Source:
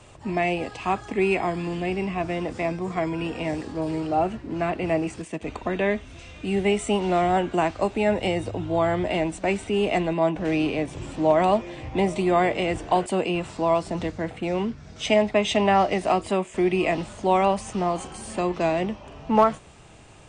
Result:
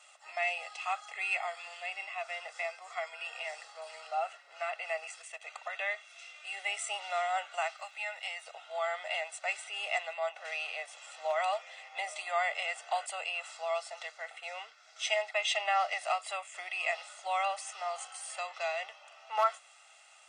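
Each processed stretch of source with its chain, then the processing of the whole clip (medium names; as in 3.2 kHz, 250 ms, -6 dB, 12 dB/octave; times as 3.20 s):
7.75–8.45 s: Bessel high-pass 1.2 kHz + treble shelf 4.6 kHz -5.5 dB + crackle 180 per s -58 dBFS
whole clip: Bessel high-pass 1.2 kHz, order 6; comb 1.5 ms, depth 77%; trim -5 dB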